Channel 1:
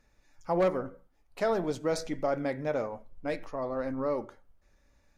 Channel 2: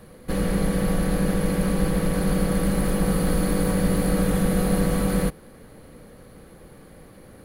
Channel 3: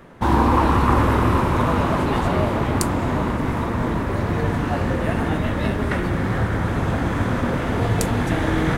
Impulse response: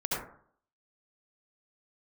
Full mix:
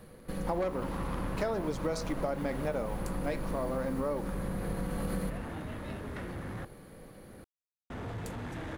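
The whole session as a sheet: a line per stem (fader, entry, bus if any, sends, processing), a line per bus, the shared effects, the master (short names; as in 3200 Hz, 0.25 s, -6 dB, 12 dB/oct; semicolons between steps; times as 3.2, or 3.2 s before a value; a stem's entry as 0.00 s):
+3.0 dB, 0.00 s, no send, level-crossing sampler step -52 dBFS
-6.5 dB, 0.00 s, send -12 dB, compressor, threshold -24 dBFS, peak gain reduction 8 dB; auto duck -13 dB, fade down 0.65 s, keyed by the first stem
-16.0 dB, 0.25 s, muted 6.65–7.9, no send, soft clip -17.5 dBFS, distortion -12 dB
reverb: on, RT60 0.55 s, pre-delay 62 ms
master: compressor 6:1, threshold -29 dBFS, peak gain reduction 10.5 dB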